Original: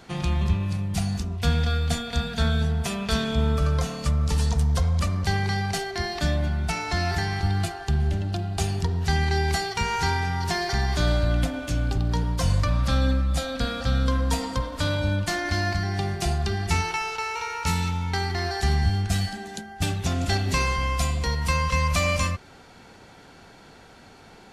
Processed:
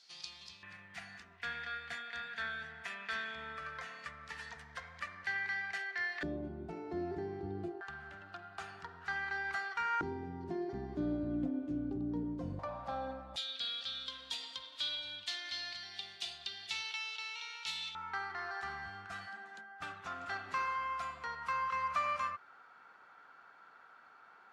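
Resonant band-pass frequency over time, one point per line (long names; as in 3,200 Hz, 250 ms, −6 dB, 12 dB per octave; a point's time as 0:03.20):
resonant band-pass, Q 4.2
4,800 Hz
from 0:00.63 1,800 Hz
from 0:06.23 360 Hz
from 0:07.81 1,400 Hz
from 0:10.01 310 Hz
from 0:12.59 780 Hz
from 0:13.36 3,500 Hz
from 0:17.95 1,300 Hz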